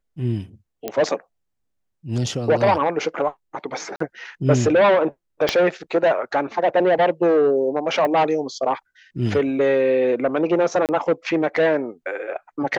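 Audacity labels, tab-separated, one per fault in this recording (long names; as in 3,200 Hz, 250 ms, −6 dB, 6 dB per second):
0.880000	0.880000	click −11 dBFS
3.960000	4.000000	drop-out 44 ms
5.490000	5.490000	click −5 dBFS
8.050000	8.050000	click −13 dBFS
10.860000	10.890000	drop-out 28 ms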